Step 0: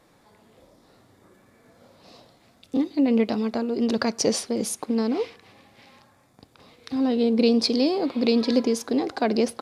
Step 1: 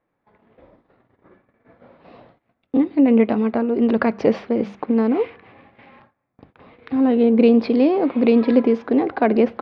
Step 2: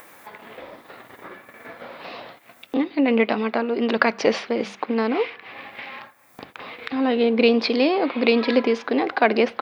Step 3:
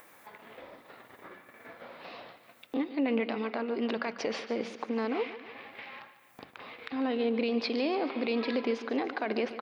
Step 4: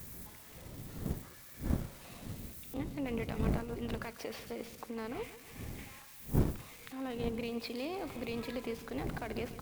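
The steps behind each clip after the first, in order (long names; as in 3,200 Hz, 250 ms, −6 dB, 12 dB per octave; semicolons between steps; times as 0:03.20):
low-pass filter 2,500 Hz 24 dB per octave; mains-hum notches 50/100/150/200 Hz; noise gate −55 dBFS, range −21 dB; level +6 dB
spectral tilt +4.5 dB per octave; upward compression, threshold −30 dBFS; level +3 dB
brickwall limiter −11.5 dBFS, peak gain reduction 9 dB; repeating echo 145 ms, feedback 53%, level −14 dB; level −9 dB
spike at every zero crossing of −34 dBFS; wind on the microphone 190 Hz −33 dBFS; harmonic generator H 7 −26 dB, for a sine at −9.5 dBFS; level −6.5 dB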